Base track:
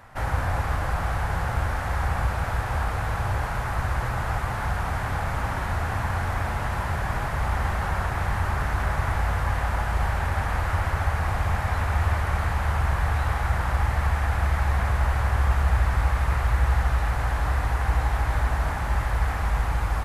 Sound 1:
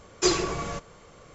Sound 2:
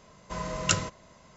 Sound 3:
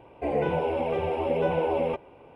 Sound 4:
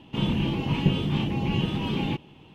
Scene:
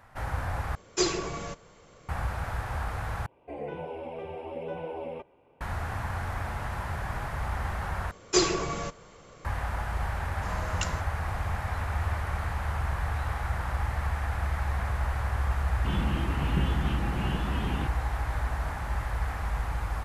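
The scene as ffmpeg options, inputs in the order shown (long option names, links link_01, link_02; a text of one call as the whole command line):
ffmpeg -i bed.wav -i cue0.wav -i cue1.wav -i cue2.wav -i cue3.wav -filter_complex "[1:a]asplit=2[link_01][link_02];[0:a]volume=-6.5dB[link_03];[link_01]equalizer=frequency=1200:width_type=o:width=0.21:gain=-2.5[link_04];[2:a]alimiter=level_in=10dB:limit=-1dB:release=50:level=0:latency=1[link_05];[4:a]lowpass=4500[link_06];[link_03]asplit=4[link_07][link_08][link_09][link_10];[link_07]atrim=end=0.754[link_11];[link_04]atrim=end=1.34,asetpts=PTS-STARTPTS,volume=-3.5dB[link_12];[link_08]atrim=start=2.086:end=3.264[link_13];[3:a]atrim=end=2.35,asetpts=PTS-STARTPTS,volume=-11dB[link_14];[link_09]atrim=start=5.606:end=8.114[link_15];[link_02]atrim=end=1.34,asetpts=PTS-STARTPTS,volume=-0.5dB[link_16];[link_10]atrim=start=9.446[link_17];[link_05]atrim=end=1.36,asetpts=PTS-STARTPTS,volume=-16dB,afade=type=in:duration=0.004:curve=hsin,afade=type=out:start_time=1.356:duration=0.004:curve=hsin,adelay=10120[link_18];[link_06]atrim=end=2.54,asetpts=PTS-STARTPTS,volume=-7dB,afade=type=in:duration=0.004:curve=hsin,afade=type=out:start_time=2.536:duration=0.004:curve=hsin,adelay=15710[link_19];[link_11][link_12]acrossfade=duration=0.004:curve1=hsin:curve2=hsin[link_20];[link_20][link_13]acrossfade=duration=0.004:curve1=hsin:curve2=hsin[link_21];[link_21][link_14]acrossfade=duration=0.004:curve1=hsin:curve2=hsin[link_22];[link_22][link_15]acrossfade=duration=0.004:curve1=hsin:curve2=hsin[link_23];[link_23][link_16]acrossfade=duration=0.004:curve1=hsin:curve2=hsin[link_24];[link_24][link_17]acrossfade=duration=0.004:curve1=hsin:curve2=hsin[link_25];[link_25][link_18][link_19]amix=inputs=3:normalize=0" out.wav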